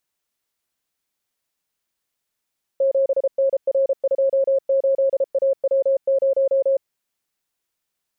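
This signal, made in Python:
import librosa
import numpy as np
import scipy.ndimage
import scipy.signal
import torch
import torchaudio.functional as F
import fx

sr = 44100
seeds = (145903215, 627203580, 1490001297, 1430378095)

y = fx.morse(sr, text='7NR28AW0', wpm=33, hz=542.0, level_db=-14.5)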